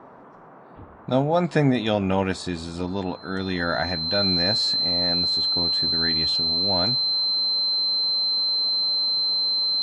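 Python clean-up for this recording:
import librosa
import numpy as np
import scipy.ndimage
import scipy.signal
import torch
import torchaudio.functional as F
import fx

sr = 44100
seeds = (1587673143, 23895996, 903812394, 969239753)

y = fx.notch(x, sr, hz=4100.0, q=30.0)
y = fx.noise_reduce(y, sr, print_start_s=0.21, print_end_s=0.71, reduce_db=25.0)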